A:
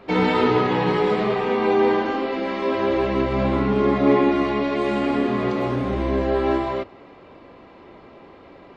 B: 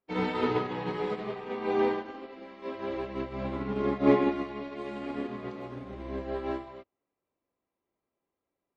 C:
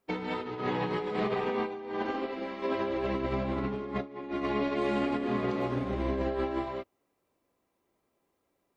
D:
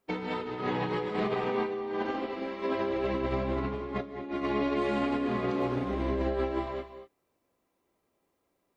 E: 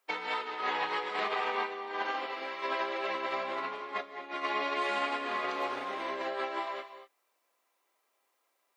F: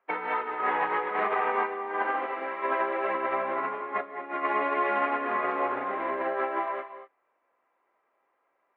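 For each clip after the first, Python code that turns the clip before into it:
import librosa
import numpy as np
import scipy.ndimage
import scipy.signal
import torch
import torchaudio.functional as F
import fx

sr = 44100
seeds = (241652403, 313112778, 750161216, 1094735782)

y1 = fx.upward_expand(x, sr, threshold_db=-39.0, expansion=2.5)
y1 = y1 * 10.0 ** (-3.0 / 20.0)
y2 = fx.over_compress(y1, sr, threshold_db=-37.0, ratio=-1.0)
y2 = y2 * 10.0 ** (4.5 / 20.0)
y3 = fx.rev_gated(y2, sr, seeds[0], gate_ms=260, shape='rising', drr_db=10.5)
y4 = scipy.signal.sosfilt(scipy.signal.butter(2, 890.0, 'highpass', fs=sr, output='sos'), y3)
y4 = y4 * 10.0 ** (5.0 / 20.0)
y5 = scipy.signal.sosfilt(scipy.signal.butter(4, 2000.0, 'lowpass', fs=sr, output='sos'), y4)
y5 = y5 * 10.0 ** (6.0 / 20.0)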